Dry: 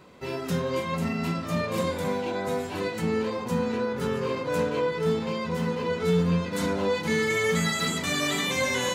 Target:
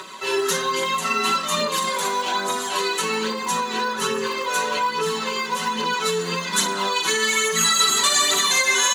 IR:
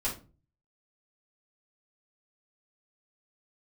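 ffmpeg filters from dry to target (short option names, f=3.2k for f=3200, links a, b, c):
-filter_complex "[0:a]highpass=370,equalizer=f=530:t=q:w=4:g=-5,equalizer=f=790:t=q:w=4:g=-4,equalizer=f=1.1k:t=q:w=4:g=7,equalizer=f=2.4k:t=q:w=4:g=-6,equalizer=f=5.2k:t=q:w=4:g=-9,equalizer=f=8.5k:t=q:w=4:g=-9,lowpass=f=9.4k:w=0.5412,lowpass=f=9.4k:w=1.3066,asplit=2[a][b];[1:a]atrim=start_sample=2205[c];[b][c]afir=irnorm=-1:irlink=0,volume=-6.5dB[d];[a][d]amix=inputs=2:normalize=0,aphaser=in_gain=1:out_gain=1:delay=2.8:decay=0.41:speed=1.2:type=triangular,alimiter=limit=-19dB:level=0:latency=1:release=161,crystalizer=i=8:c=0,acompressor=mode=upward:threshold=-33dB:ratio=2.5,aecho=1:1:5.3:0.74"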